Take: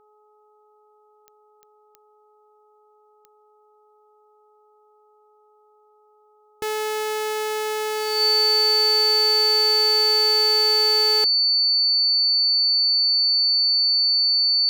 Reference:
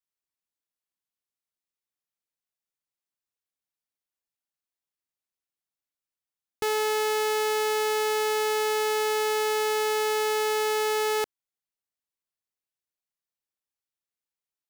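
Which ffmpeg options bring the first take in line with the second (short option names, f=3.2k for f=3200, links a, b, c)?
-af "adeclick=t=4,bandreject=f=423:t=h:w=4,bandreject=f=846:t=h:w=4,bandreject=f=1.269k:t=h:w=4,bandreject=f=4.5k:w=30"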